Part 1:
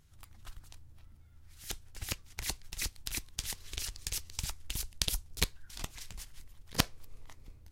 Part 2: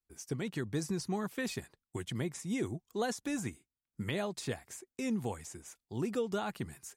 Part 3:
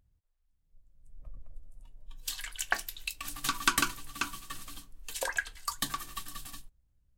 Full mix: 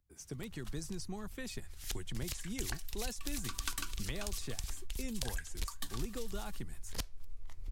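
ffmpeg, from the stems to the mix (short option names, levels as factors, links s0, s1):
-filter_complex "[0:a]asubboost=boost=5:cutoff=65,acompressor=threshold=0.0158:ratio=6,adelay=200,volume=1.12[s0];[1:a]volume=0.668[s1];[2:a]volume=0.299[s2];[s0][s1][s2]amix=inputs=3:normalize=0,acrossover=split=130|3000[s3][s4][s5];[s4]acompressor=threshold=0.00631:ratio=2.5[s6];[s3][s6][s5]amix=inputs=3:normalize=0"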